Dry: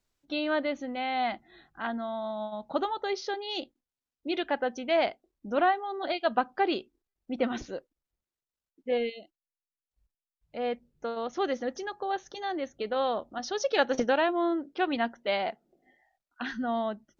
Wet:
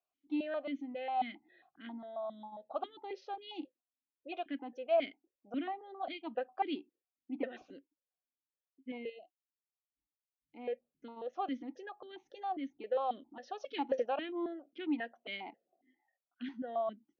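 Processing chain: notch 2300 Hz, Q 18; vowel sequencer 7.4 Hz; gain +1.5 dB

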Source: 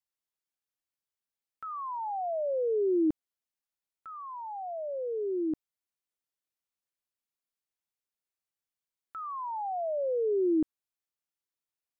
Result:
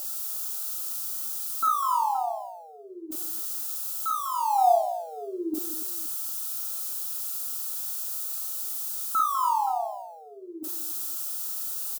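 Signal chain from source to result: switching spikes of -33 dBFS; dynamic EQ 490 Hz, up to +6 dB, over -42 dBFS, Q 1.2; whine 590 Hz -56 dBFS; negative-ratio compressor -35 dBFS, ratio -0.5; fixed phaser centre 540 Hz, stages 6; small resonant body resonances 200/300/690/1300 Hz, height 14 dB, ringing for 20 ms; on a send: tapped delay 45/48/199/285/520 ms -3.5/-16.5/-11/-13.5/-19.5 dB

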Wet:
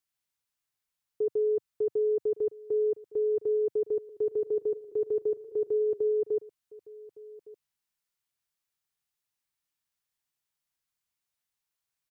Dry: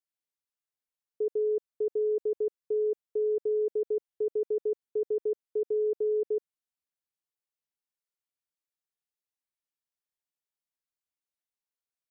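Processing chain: graphic EQ 125/250/500 Hz +4/-4/-6 dB; echo 1.161 s -20.5 dB; 3.86–6.08 warbling echo 0.19 s, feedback 69%, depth 84 cents, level -21 dB; gain +7 dB

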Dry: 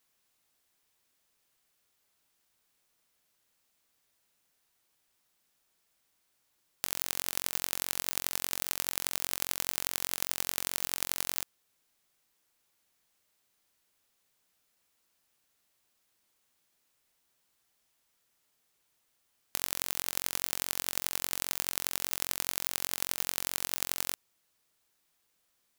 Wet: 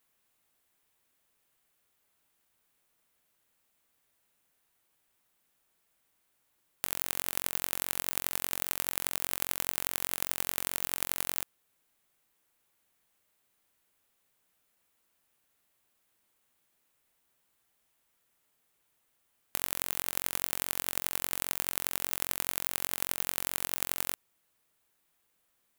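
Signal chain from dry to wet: bell 5200 Hz -6.5 dB 1.1 oct; gain +1.5 dB

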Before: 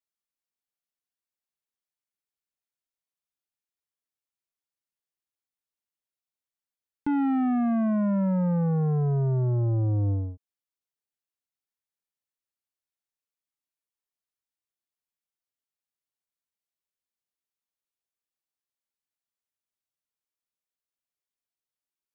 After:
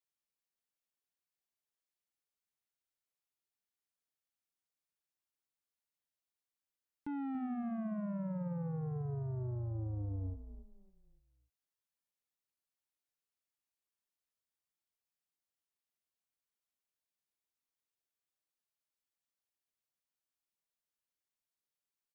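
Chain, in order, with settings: limiter -34.5 dBFS, peak gain reduction 12 dB; on a send: frequency-shifting echo 0.281 s, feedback 38%, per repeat -39 Hz, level -11 dB; on the sum: gain -3 dB

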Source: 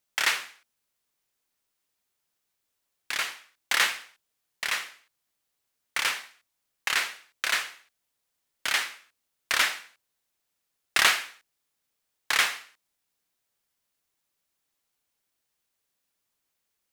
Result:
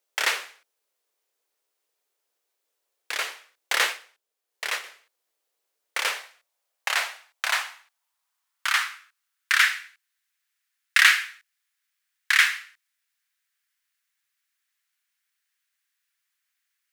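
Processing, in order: high-pass sweep 450 Hz -> 1700 Hz, 5.86–9.81; 3.89–4.84 transient shaper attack -1 dB, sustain -5 dB

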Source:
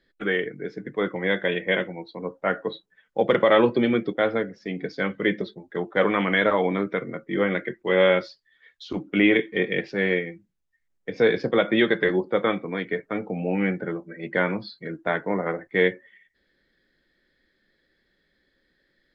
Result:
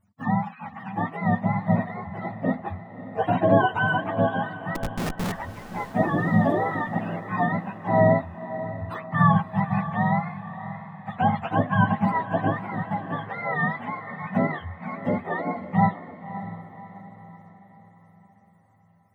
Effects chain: spectrum mirrored in octaves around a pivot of 600 Hz; 4.75–5.32 Schmitt trigger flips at -28.5 dBFS; diffused feedback echo 0.578 s, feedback 47%, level -12.5 dB

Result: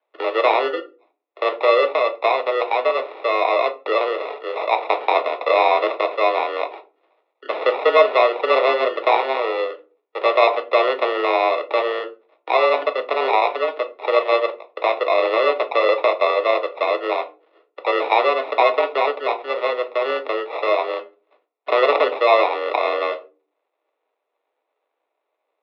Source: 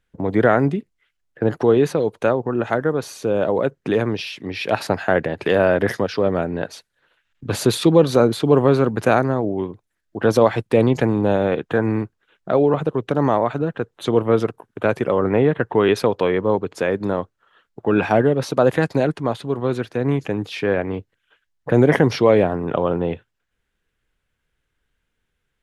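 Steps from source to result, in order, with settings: in parallel at +0.5 dB: compressor, threshold -24 dBFS, peak gain reduction 15.5 dB; on the sum: sample-and-hold 30×; shoebox room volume 130 m³, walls furnished, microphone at 0.72 m; mistuned SSB +130 Hz 290–3500 Hz; gain -2.5 dB

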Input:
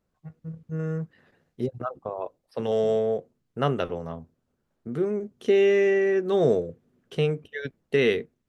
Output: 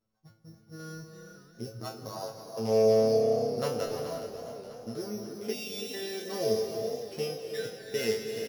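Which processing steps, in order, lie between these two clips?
sample sorter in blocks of 8 samples; in parallel at -3 dB: compressor, threshold -29 dBFS, peak gain reduction 12 dB; on the sum: resonator 110 Hz, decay 0.29 s, harmonics all, mix 100%; spectral delete 5.53–5.94, 210–2100 Hz; on a send: frequency-shifting echo 0.417 s, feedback 41%, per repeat +33 Hz, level -11.5 dB; on the sum: non-linear reverb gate 0.37 s rising, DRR 6 dB; warbling echo 0.537 s, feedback 68%, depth 209 cents, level -17 dB

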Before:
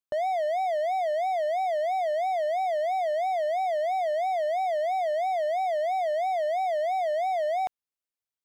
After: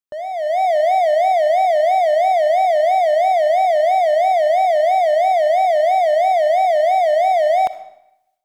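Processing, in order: AGC gain up to 13 dB; reverb RT60 0.85 s, pre-delay 20 ms, DRR 12 dB; gain -1.5 dB

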